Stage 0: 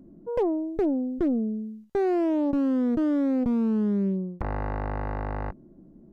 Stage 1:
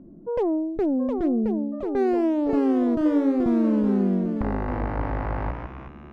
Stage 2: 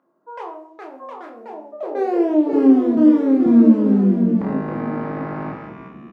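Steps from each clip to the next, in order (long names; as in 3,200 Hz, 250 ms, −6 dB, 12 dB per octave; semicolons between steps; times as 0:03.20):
brickwall limiter −21 dBFS, peak gain reduction 4 dB; low-pass that shuts in the quiet parts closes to 1,500 Hz, open at −22.5 dBFS; delay with pitch and tempo change per echo 754 ms, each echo +2 semitones, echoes 3, each echo −6 dB; level +3.5 dB
high-pass filter sweep 1,100 Hz → 200 Hz, 0:01.26–0:02.97; double-tracking delay 26 ms −4.5 dB; convolution reverb RT60 0.60 s, pre-delay 6 ms, DRR 2.5 dB; level −2 dB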